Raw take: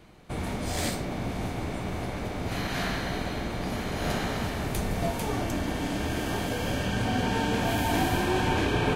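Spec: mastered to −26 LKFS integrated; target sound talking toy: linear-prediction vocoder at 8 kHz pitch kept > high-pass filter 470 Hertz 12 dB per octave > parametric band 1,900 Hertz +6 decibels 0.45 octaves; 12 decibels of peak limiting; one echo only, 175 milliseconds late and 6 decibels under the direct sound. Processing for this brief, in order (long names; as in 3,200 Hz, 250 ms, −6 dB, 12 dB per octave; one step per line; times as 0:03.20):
brickwall limiter −24.5 dBFS
single-tap delay 175 ms −6 dB
linear-prediction vocoder at 8 kHz pitch kept
high-pass filter 470 Hz 12 dB per octave
parametric band 1,900 Hz +6 dB 0.45 octaves
level +10 dB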